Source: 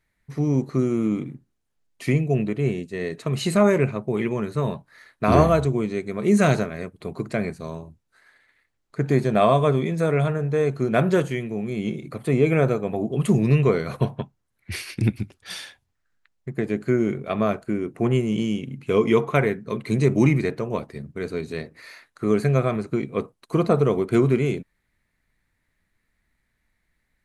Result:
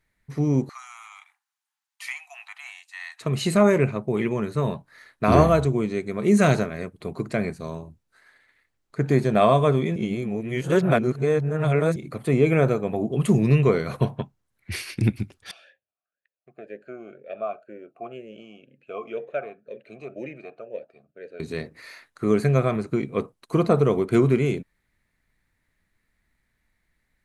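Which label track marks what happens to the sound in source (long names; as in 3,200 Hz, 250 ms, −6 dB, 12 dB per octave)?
0.690000	3.210000	Butterworth high-pass 770 Hz 96 dB per octave
9.960000	11.960000	reverse
15.510000	21.400000	formant filter swept between two vowels a-e 2 Hz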